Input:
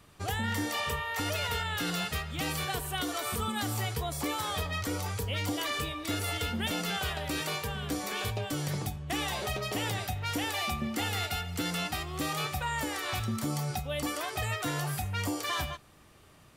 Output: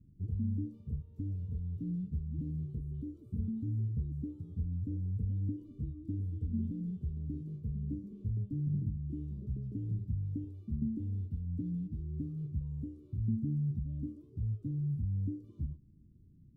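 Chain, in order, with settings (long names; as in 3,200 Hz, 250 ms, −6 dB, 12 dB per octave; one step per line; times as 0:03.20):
inverse Chebyshev low-pass filter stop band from 660 Hz, stop band 50 dB
level +1.5 dB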